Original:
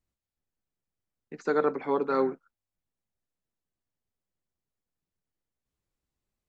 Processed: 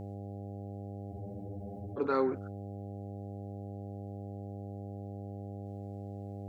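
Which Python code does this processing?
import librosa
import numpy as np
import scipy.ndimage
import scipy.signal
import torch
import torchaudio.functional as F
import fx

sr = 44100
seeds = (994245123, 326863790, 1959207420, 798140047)

y = fx.dmg_buzz(x, sr, base_hz=100.0, harmonics=8, level_db=-53.0, tilt_db=-5, odd_only=False)
y = fx.spec_freeze(y, sr, seeds[0], at_s=1.14, hold_s=0.85)
y = fx.env_flatten(y, sr, amount_pct=50)
y = F.gain(torch.from_numpy(y), -4.0).numpy()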